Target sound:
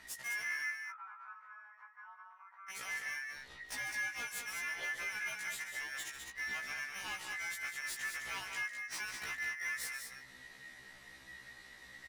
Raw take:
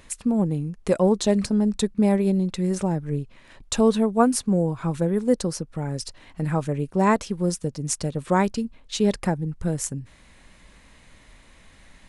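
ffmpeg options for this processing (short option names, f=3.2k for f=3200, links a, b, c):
-filter_complex "[0:a]acompressor=threshold=-27dB:ratio=4,aeval=exprs='val(0)*sin(2*PI*1900*n/s)':c=same,volume=36dB,asoftclip=hard,volume=-36dB,asettb=1/sr,asplit=3[a][b][c];[a]atrim=end=0.704[d];[b]atrim=start=0.7:end=2.7,asetpts=PTS-STARTPTS,afade=t=in:d=0.004:c=qsin,afade=t=out:st=1.996:d=0.004:c=qsin,asuperpass=centerf=1100:order=4:qfactor=2.6[e];[c]atrim=start=2.696[f];[d][e]acrossfade=d=0.004:c1=hsin:c2=qsin[g];[g][f]acrossfade=d=0.004:c1=qsin:c2=hsin,aecho=1:1:145.8|204.1:0.282|0.501,afftfilt=real='re*1.73*eq(mod(b,3),0)':imag='im*1.73*eq(mod(b,3),0)':win_size=2048:overlap=0.75"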